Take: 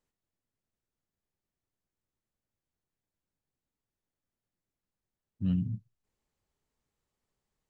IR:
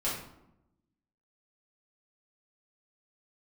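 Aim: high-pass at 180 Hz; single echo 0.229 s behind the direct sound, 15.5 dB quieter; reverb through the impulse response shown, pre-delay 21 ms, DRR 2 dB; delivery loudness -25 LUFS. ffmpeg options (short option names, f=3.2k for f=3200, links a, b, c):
-filter_complex "[0:a]highpass=180,aecho=1:1:229:0.168,asplit=2[a][b];[1:a]atrim=start_sample=2205,adelay=21[c];[b][c]afir=irnorm=-1:irlink=0,volume=-8.5dB[d];[a][d]amix=inputs=2:normalize=0,volume=11dB"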